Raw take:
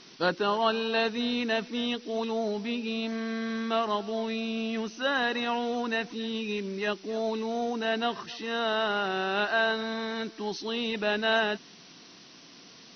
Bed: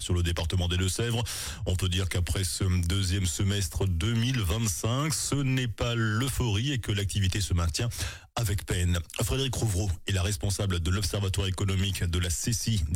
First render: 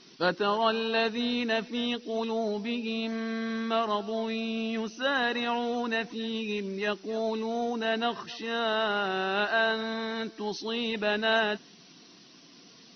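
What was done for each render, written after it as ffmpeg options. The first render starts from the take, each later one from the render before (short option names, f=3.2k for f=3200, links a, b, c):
-af "afftdn=nr=6:nf=-52"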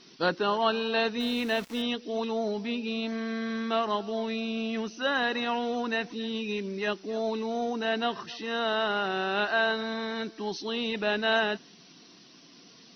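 -filter_complex "[0:a]asettb=1/sr,asplit=3[a][b][c];[a]atrim=end=1.204[d];[b]atrim=start=1.2:end=1.82,asetpts=PTS-STARTPTS,afade=t=in:d=0.004:c=qsin,afade=t=out:st=0.616:d=0.004:c=qsin,aeval=exprs='val(0)*gte(abs(val(0)),0.00944)':c=same[e];[c]atrim=start=1.816[f];[d][e]acrossfade=d=0.004:c1=hsin:c2=qsin[g];[g][f]acrossfade=d=0.004:c1=qsin:c2=hsin"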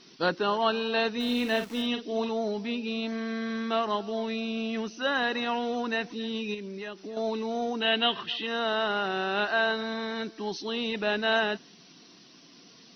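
-filter_complex "[0:a]asettb=1/sr,asplit=3[a][b][c];[a]atrim=end=1.244[d];[b]atrim=start=1.24:end=2.29,asetpts=PTS-STARTPTS,afade=t=in:d=0.004:c=qsin,afade=t=out:st=1.046:d=0.004:c=qsin,asplit=2[e][f];[f]adelay=45,volume=-8dB[g];[e][g]amix=inputs=2:normalize=0,atrim=end_sample=46305[h];[c]atrim=start=2.286[i];[d][h]acrossfade=d=0.004:c1=hsin:c2=qsin[j];[j][i]acrossfade=d=0.004:c1=qsin:c2=hsin,asettb=1/sr,asplit=3[k][l][m];[k]atrim=end=6.544[n];[l]atrim=start=6.54:end=7.17,asetpts=PTS-STARTPTS,afade=t=in:d=0.004:c=qsin,afade=t=out:st=0.626:d=0.004:c=qsin,acompressor=threshold=-35dB:ratio=4:attack=3.2:release=140:knee=1:detection=peak[o];[m]atrim=start=7.166[p];[n][o]acrossfade=d=0.004:c1=hsin:c2=qsin[q];[q][p]acrossfade=d=0.004:c1=qsin:c2=hsin,asettb=1/sr,asplit=3[r][s][t];[r]atrim=end=7.804[u];[s]atrim=start=7.8:end=8.47,asetpts=PTS-STARTPTS,afade=t=in:d=0.004:c=qsin,afade=t=out:st=0.666:d=0.004:c=qsin,lowpass=f=3.2k:t=q:w=4.4[v];[t]atrim=start=8.466[w];[u][v]acrossfade=d=0.004:c1=hsin:c2=qsin[x];[x][w]acrossfade=d=0.004:c1=qsin:c2=hsin"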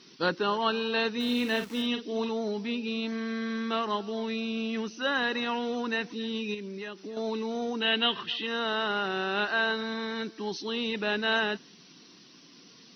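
-af "highpass=53,equalizer=f=680:w=3.8:g=-6.5"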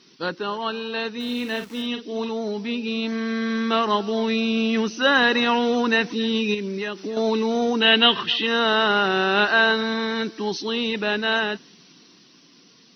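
-af "dynaudnorm=f=870:g=7:m=11.5dB"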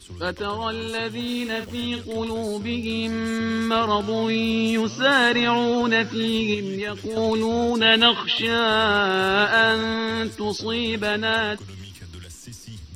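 -filter_complex "[1:a]volume=-12dB[a];[0:a][a]amix=inputs=2:normalize=0"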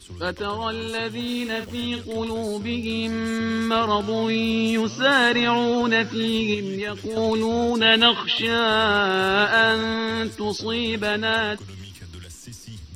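-af anull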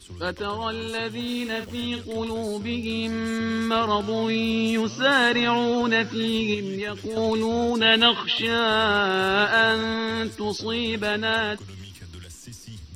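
-af "volume=-1.5dB"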